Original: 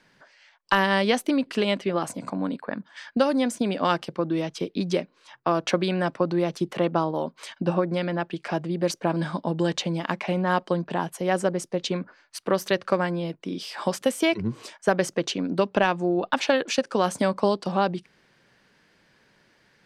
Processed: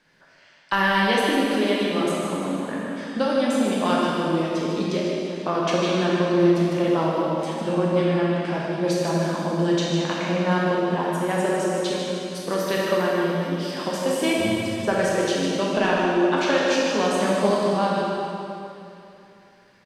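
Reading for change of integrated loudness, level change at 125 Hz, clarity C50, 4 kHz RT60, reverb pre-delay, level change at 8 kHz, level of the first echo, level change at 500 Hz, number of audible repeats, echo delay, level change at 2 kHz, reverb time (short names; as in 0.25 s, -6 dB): +3.0 dB, +3.0 dB, -3.5 dB, 2.6 s, 5 ms, +3.0 dB, -6.5 dB, +3.5 dB, 1, 0.153 s, +3.5 dB, 2.8 s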